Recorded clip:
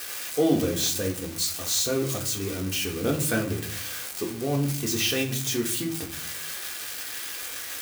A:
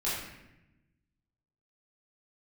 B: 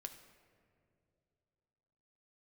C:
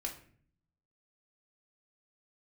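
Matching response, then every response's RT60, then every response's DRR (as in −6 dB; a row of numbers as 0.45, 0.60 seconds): C; 0.90 s, non-exponential decay, 0.50 s; −9.5, 6.0, −0.5 decibels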